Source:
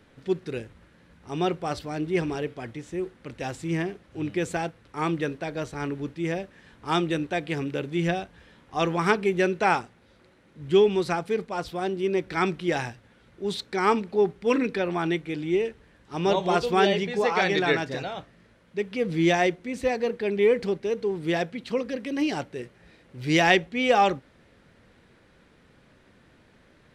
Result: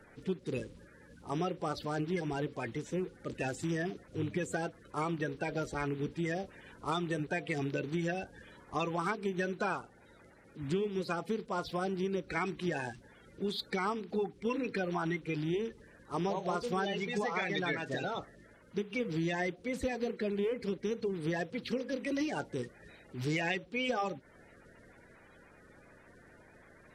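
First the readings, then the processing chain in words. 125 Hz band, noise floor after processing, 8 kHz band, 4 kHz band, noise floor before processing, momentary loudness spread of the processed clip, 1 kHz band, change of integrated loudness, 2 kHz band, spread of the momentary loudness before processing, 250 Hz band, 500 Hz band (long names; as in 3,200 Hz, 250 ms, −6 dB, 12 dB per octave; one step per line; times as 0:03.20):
−6.0 dB, −59 dBFS, −7.5 dB, −10.0 dB, −59 dBFS, 7 LU, −10.5 dB, −9.5 dB, −9.0 dB, 13 LU, −8.0 dB, −10.5 dB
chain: spectral magnitudes quantised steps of 30 dB
downward compressor, threshold −31 dBFS, peak gain reduction 15.5 dB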